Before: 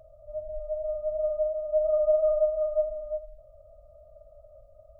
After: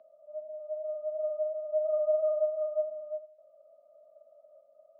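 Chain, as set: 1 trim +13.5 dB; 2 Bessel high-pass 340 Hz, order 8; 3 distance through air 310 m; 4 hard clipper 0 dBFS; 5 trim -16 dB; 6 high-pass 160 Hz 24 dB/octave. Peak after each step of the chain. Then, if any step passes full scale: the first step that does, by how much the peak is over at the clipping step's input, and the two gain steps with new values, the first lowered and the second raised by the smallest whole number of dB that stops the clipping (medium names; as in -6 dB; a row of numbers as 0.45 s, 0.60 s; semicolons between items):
-1.5 dBFS, -2.5 dBFS, -3.5 dBFS, -3.5 dBFS, -19.5 dBFS, -19.5 dBFS; nothing clips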